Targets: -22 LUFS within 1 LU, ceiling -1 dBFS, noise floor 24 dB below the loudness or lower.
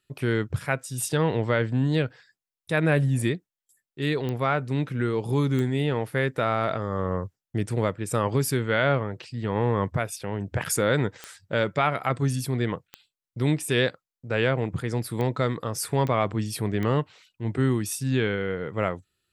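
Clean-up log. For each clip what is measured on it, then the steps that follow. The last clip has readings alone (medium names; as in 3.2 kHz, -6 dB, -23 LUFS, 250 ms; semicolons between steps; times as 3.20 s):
clicks found 7; loudness -26.5 LUFS; peak level -8.5 dBFS; loudness target -22.0 LUFS
-> de-click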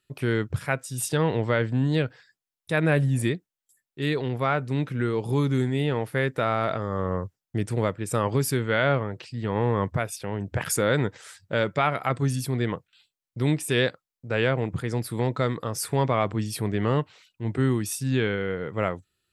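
clicks found 0; loudness -26.5 LUFS; peak level -8.5 dBFS; loudness target -22.0 LUFS
-> trim +4.5 dB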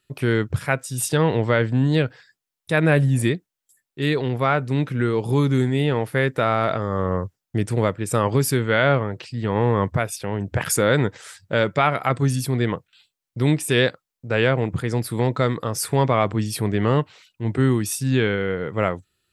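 loudness -22.0 LUFS; peak level -4.0 dBFS; noise floor -85 dBFS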